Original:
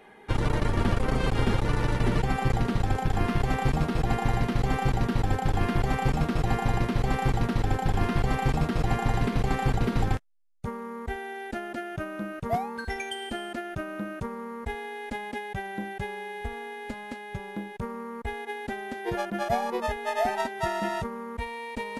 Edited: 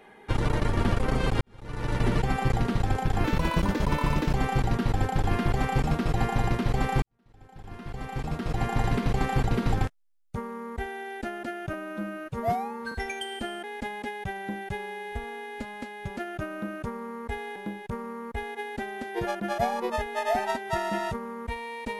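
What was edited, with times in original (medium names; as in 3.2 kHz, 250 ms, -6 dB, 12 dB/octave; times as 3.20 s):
1.41–1.97 s: fade in quadratic
3.24–4.64 s: speed 127%
7.32–9.11 s: fade in quadratic
12.03–12.82 s: stretch 1.5×
13.54–14.93 s: move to 17.46 s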